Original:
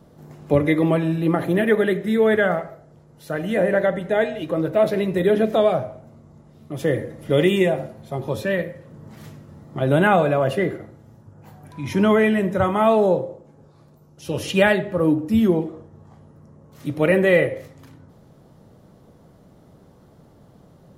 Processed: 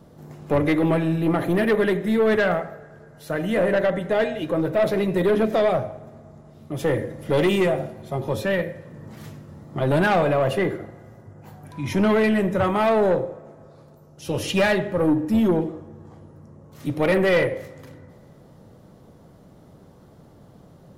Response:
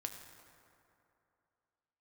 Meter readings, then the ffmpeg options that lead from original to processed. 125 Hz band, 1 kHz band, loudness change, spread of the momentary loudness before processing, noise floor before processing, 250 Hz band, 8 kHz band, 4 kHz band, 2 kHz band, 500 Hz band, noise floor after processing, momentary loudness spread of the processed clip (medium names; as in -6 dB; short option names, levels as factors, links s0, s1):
-1.5 dB, -1.5 dB, -1.5 dB, 14 LU, -52 dBFS, -1.5 dB, no reading, -0.5 dB, -2.0 dB, -1.5 dB, -50 dBFS, 16 LU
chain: -filter_complex "[0:a]aeval=exprs='(tanh(5.62*val(0)+0.15)-tanh(0.15))/5.62':c=same,asplit=2[s0][s1];[1:a]atrim=start_sample=2205[s2];[s1][s2]afir=irnorm=-1:irlink=0,volume=0.251[s3];[s0][s3]amix=inputs=2:normalize=0"